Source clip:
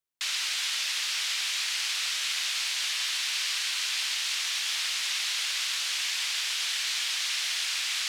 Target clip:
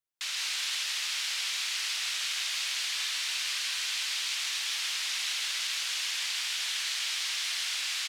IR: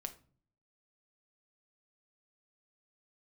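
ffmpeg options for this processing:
-af "aecho=1:1:159:0.668,volume=-4dB"

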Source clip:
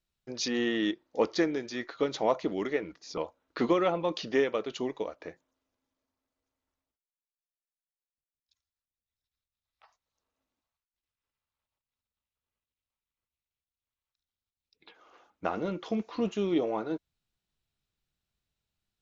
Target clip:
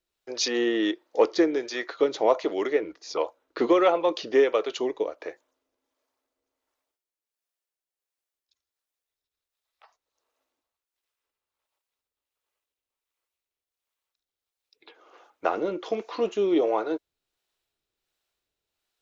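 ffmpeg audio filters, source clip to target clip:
-filter_complex "[0:a]acontrast=79,lowshelf=f=260:t=q:w=1.5:g=-12,acrossover=split=450[a][b];[a]aeval=exprs='val(0)*(1-0.5/2+0.5/2*cos(2*PI*1.4*n/s))':c=same[c];[b]aeval=exprs='val(0)*(1-0.5/2-0.5/2*cos(2*PI*1.4*n/s))':c=same[d];[c][d]amix=inputs=2:normalize=0"

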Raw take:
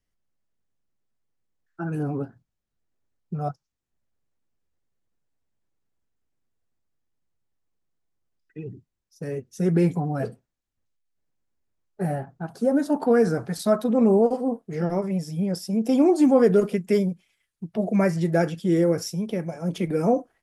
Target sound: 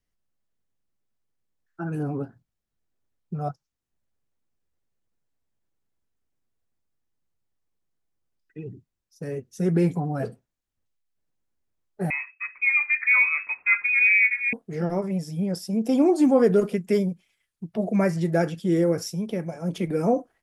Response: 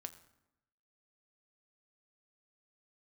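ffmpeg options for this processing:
-filter_complex "[0:a]asettb=1/sr,asplit=3[a][b][c];[a]atrim=end=12.104[d];[b]atrim=start=12.1:end=14.53,asetpts=PTS-STARTPTS,afade=t=in:d=0.004:c=qsin,afade=t=out:st=2.426:d=0.004:c=qsin,lowpass=f=2.3k:t=q:w=0.5098,lowpass=f=2.3k:t=q:w=0.6013,lowpass=f=2.3k:t=q:w=0.9,lowpass=f=2.3k:t=q:w=2.563,afreqshift=-2700[e];[c]atrim=start=14.526[f];[d][e]acrossfade=d=0.004:c1=hsin:c2=qsin[g];[g][f]acrossfade=d=0.004:c1=qsin:c2=hsin,volume=-1dB"

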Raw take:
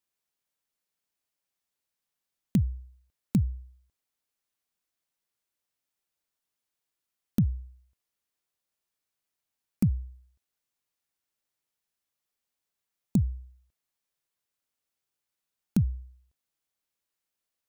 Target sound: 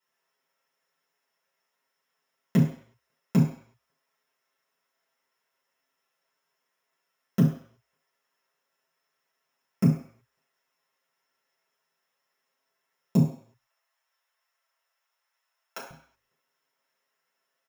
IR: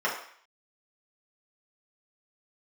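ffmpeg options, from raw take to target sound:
-filter_complex "[0:a]asettb=1/sr,asplit=3[a][b][c];[a]atrim=end=13.284[d];[b]atrim=start=13.28:end=15.91,asetpts=PTS-STARTPTS,afade=t=in:d=0.004:c=qsin,afade=t=out:st=2.626:d=0.004:c=qsin,highpass=f=610:w=0.5412,highpass=f=610:w=1.3066[e];[c]atrim=start=15.906[f];[d][e]acrossfade=d=0.004:c1=hsin:c2=qsin[g];[g][f]acrossfade=d=0.004:c1=qsin:c2=hsin,aecho=1:1:7.5:0.69[h];[1:a]atrim=start_sample=2205,afade=t=out:st=0.43:d=0.01,atrim=end_sample=19404[i];[h][i]afir=irnorm=-1:irlink=0"

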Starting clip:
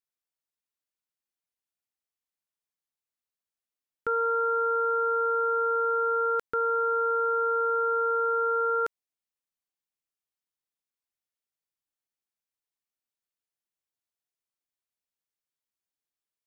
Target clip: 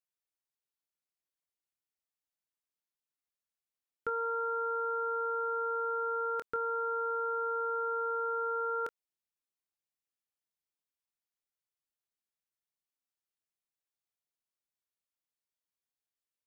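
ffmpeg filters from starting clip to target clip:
-filter_complex "[0:a]asplit=2[a][b];[b]adelay=25,volume=-11dB[c];[a][c]amix=inputs=2:normalize=0,volume=-5dB"

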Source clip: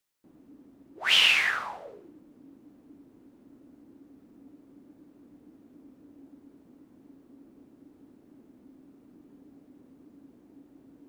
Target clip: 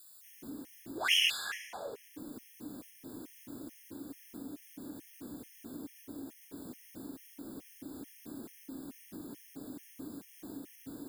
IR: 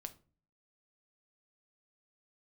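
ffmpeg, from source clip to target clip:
-filter_complex "[0:a]acompressor=threshold=-50dB:ratio=4,crystalizer=i=6:c=0,asplit=2[a][b];[1:a]atrim=start_sample=2205,asetrate=29988,aresample=44100[c];[b][c]afir=irnorm=-1:irlink=0,volume=1dB[d];[a][d]amix=inputs=2:normalize=0,afftfilt=real='re*gt(sin(2*PI*2.3*pts/sr)*(1-2*mod(floor(b*sr/1024/1700),2)),0)':imag='im*gt(sin(2*PI*2.3*pts/sr)*(1-2*mod(floor(b*sr/1024/1700),2)),0)':win_size=1024:overlap=0.75,volume=5dB"

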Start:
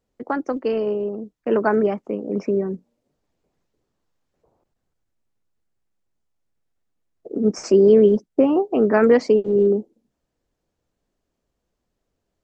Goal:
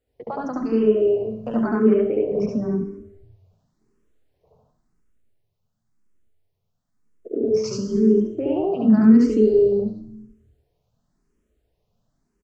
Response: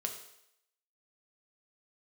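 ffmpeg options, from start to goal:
-filter_complex "[0:a]acompressor=threshold=-21dB:ratio=6,asettb=1/sr,asplit=3[a][b][c];[a]atrim=end=8.694[d];[b]atrim=start=8.69:end=9.45,asetpts=PTS-STARTPTS,afade=t=in:d=0.004:c=qsin,afade=t=out:st=0.756:d=0.004:c=qsin,equalizer=f=250:t=o:w=1:g=11,equalizer=f=500:t=o:w=1:g=-5,equalizer=f=1k:t=o:w=1:g=-4,equalizer=f=2k:t=o:w=1:g=-5,equalizer=f=4k:t=o:w=1:g=10[e];[c]atrim=start=9.446[f];[d][e]acrossfade=d=0.004:c1=hsin:c2=qsin[g];[g][f]acrossfade=d=0.004:c1=qsin:c2=hsin,alimiter=limit=-16dB:level=0:latency=1:release=69,asettb=1/sr,asplit=3[h][i][j];[h]atrim=end=0.944[k];[i]atrim=start=0.94:end=1.64,asetpts=PTS-STARTPTS,afade=t=in:d=0.004:c=qsin,afade=t=out:st=0.696:d=0.004:c=qsin,highshelf=f=4.3k:g=7.5[l];[j]atrim=start=1.636[m];[k][l]acrossfade=d=0.004:c1=hsin:c2=qsin[n];[n][m]acrossfade=d=0.004:c1=qsin:c2=hsin,asettb=1/sr,asplit=3[o][p][q];[o]atrim=end=7.534[r];[p]atrim=start=7.53:end=8.08,asetpts=PTS-STARTPTS,afade=t=in:d=0.004:c=qsin,afade=t=out:st=0.546:d=0.004:c=qsin,asuperstop=centerf=710:order=4:qfactor=1.7[s];[q]atrim=start=8.076[t];[r][s]acrossfade=d=0.004:c1=hsin:c2=qsin[u];[u][t]acrossfade=d=0.004:c1=qsin:c2=hsin,asplit=4[v][w][x][y];[w]adelay=219,afreqshift=-94,volume=-24dB[z];[x]adelay=438,afreqshift=-188,volume=-30.6dB[aa];[y]adelay=657,afreqshift=-282,volume=-37.1dB[ab];[v][z][aa][ab]amix=inputs=4:normalize=0,asplit=2[ac][ad];[1:a]atrim=start_sample=2205,lowshelf=f=360:g=11,adelay=71[ae];[ad][ae]afir=irnorm=-1:irlink=0,volume=-0.5dB[af];[ac][af]amix=inputs=2:normalize=0,asplit=2[ag][ah];[ah]afreqshift=0.95[ai];[ag][ai]amix=inputs=2:normalize=1,volume=1dB"

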